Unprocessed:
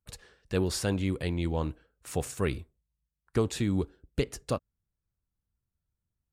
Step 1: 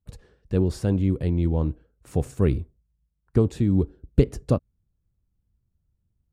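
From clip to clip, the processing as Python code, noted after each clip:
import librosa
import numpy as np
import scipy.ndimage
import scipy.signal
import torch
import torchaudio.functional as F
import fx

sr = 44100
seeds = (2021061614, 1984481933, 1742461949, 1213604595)

y = fx.tilt_shelf(x, sr, db=9.0, hz=680.0)
y = fx.rider(y, sr, range_db=10, speed_s=0.5)
y = y * librosa.db_to_amplitude(2.0)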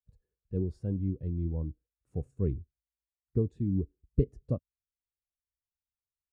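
y = fx.spectral_expand(x, sr, expansion=1.5)
y = y * librosa.db_to_amplitude(-8.5)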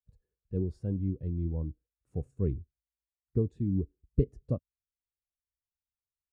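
y = x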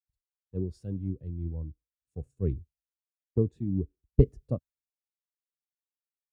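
y = fx.band_widen(x, sr, depth_pct=100)
y = y * librosa.db_to_amplitude(-1.5)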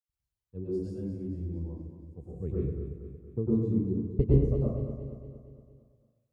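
y = fx.echo_feedback(x, sr, ms=231, feedback_pct=53, wet_db=-9.5)
y = fx.rev_plate(y, sr, seeds[0], rt60_s=0.91, hf_ratio=0.55, predelay_ms=90, drr_db=-7.0)
y = y * librosa.db_to_amplitude(-7.0)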